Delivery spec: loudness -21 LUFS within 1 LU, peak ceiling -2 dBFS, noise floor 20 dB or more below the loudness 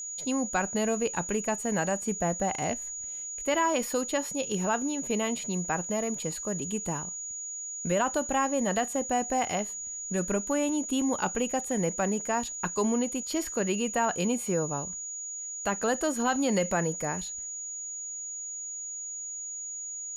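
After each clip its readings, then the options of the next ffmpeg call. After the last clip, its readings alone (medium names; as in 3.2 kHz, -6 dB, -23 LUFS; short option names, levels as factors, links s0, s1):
steady tone 6.8 kHz; tone level -35 dBFS; loudness -29.5 LUFS; peak level -14.5 dBFS; loudness target -21.0 LUFS
-> -af "bandreject=f=6800:w=30"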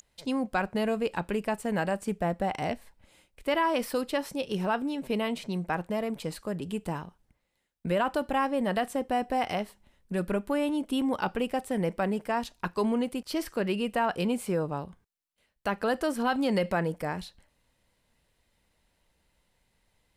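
steady tone not found; loudness -30.0 LUFS; peak level -15.0 dBFS; loudness target -21.0 LUFS
-> -af "volume=2.82"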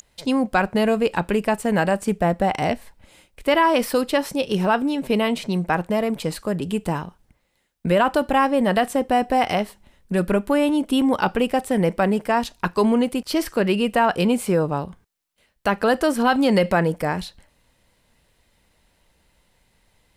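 loudness -21.5 LUFS; peak level -6.0 dBFS; noise floor -66 dBFS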